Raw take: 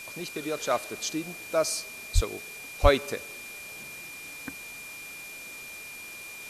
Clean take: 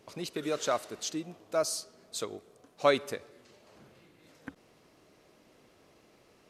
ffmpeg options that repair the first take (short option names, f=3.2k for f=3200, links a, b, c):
-filter_complex "[0:a]bandreject=f=2.4k:w=30,asplit=3[a][b][c];[a]afade=t=out:st=2.14:d=0.02[d];[b]highpass=f=140:w=0.5412,highpass=f=140:w=1.3066,afade=t=in:st=2.14:d=0.02,afade=t=out:st=2.26:d=0.02[e];[c]afade=t=in:st=2.26:d=0.02[f];[d][e][f]amix=inputs=3:normalize=0,asplit=3[g][h][i];[g]afade=t=out:st=2.82:d=0.02[j];[h]highpass=f=140:w=0.5412,highpass=f=140:w=1.3066,afade=t=in:st=2.82:d=0.02,afade=t=out:st=2.94:d=0.02[k];[i]afade=t=in:st=2.94:d=0.02[l];[j][k][l]amix=inputs=3:normalize=0,afwtdn=0.0056,asetnsamples=n=441:p=0,asendcmd='0.7 volume volume -3.5dB',volume=0dB"